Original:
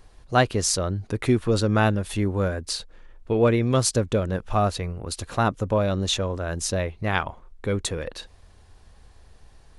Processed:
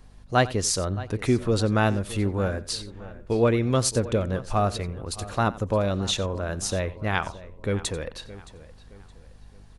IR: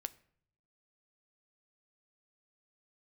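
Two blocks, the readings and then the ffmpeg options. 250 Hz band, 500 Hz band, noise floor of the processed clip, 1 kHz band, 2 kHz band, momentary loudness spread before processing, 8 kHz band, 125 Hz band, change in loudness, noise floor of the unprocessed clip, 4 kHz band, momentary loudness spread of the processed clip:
-1.5 dB, -1.5 dB, -49 dBFS, -1.5 dB, -1.5 dB, 10 LU, -1.5 dB, -1.5 dB, -1.5 dB, -52 dBFS, -1.5 dB, 12 LU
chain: -filter_complex "[0:a]asplit=2[s0][s1];[s1]aecho=0:1:89:0.119[s2];[s0][s2]amix=inputs=2:normalize=0,aeval=exprs='val(0)+0.00316*(sin(2*PI*50*n/s)+sin(2*PI*2*50*n/s)/2+sin(2*PI*3*50*n/s)/3+sin(2*PI*4*50*n/s)/4+sin(2*PI*5*50*n/s)/5)':c=same,asplit=2[s3][s4];[s4]adelay=619,lowpass=f=4300:p=1,volume=0.141,asplit=2[s5][s6];[s6]adelay=619,lowpass=f=4300:p=1,volume=0.4,asplit=2[s7][s8];[s8]adelay=619,lowpass=f=4300:p=1,volume=0.4[s9];[s5][s7][s9]amix=inputs=3:normalize=0[s10];[s3][s10]amix=inputs=2:normalize=0,volume=0.841"

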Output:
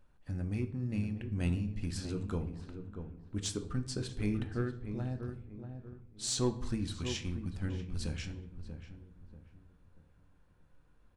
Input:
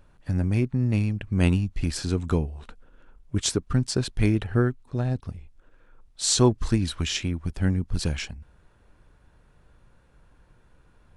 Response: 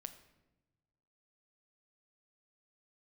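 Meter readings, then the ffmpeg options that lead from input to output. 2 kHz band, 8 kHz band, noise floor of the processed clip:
-12.0 dB, -11.5 dB, -65 dBFS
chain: -filter_complex "[0:a]asplit=2[s0][s1];[s1]volume=7.08,asoftclip=hard,volume=0.141,volume=0.562[s2];[s0][s2]amix=inputs=2:normalize=0,asplit=2[s3][s4];[s4]adelay=638,lowpass=f=1200:p=1,volume=0.398,asplit=2[s5][s6];[s6]adelay=638,lowpass=f=1200:p=1,volume=0.37,asplit=2[s7][s8];[s8]adelay=638,lowpass=f=1200:p=1,volume=0.37,asplit=2[s9][s10];[s10]adelay=638,lowpass=f=1200:p=1,volume=0.37[s11];[s3][s5][s7][s9][s11]amix=inputs=5:normalize=0[s12];[1:a]atrim=start_sample=2205,asetrate=74970,aresample=44100[s13];[s12][s13]afir=irnorm=-1:irlink=0,volume=0.501"

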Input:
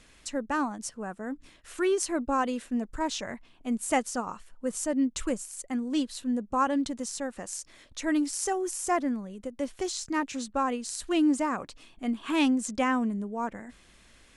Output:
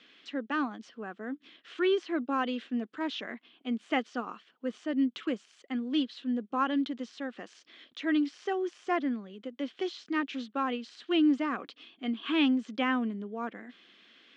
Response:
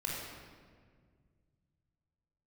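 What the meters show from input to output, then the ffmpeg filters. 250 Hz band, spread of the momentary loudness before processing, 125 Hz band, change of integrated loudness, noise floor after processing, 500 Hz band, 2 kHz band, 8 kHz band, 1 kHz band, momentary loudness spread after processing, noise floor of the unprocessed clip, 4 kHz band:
-1.5 dB, 11 LU, no reading, -2.0 dB, -66 dBFS, -2.5 dB, 0.0 dB, under -25 dB, -4.5 dB, 14 LU, -58 dBFS, +0.5 dB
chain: -filter_complex "[0:a]acrossover=split=2800[s0][s1];[s1]acompressor=threshold=0.01:ratio=4:attack=1:release=60[s2];[s0][s2]amix=inputs=2:normalize=0,highpass=f=230:w=0.5412,highpass=f=230:w=1.3066,equalizer=f=580:t=q:w=4:g=-7,equalizer=f=910:t=q:w=4:g=-9,equalizer=f=3200:t=q:w=4:g=8,lowpass=f=4300:w=0.5412,lowpass=f=4300:w=1.3066"

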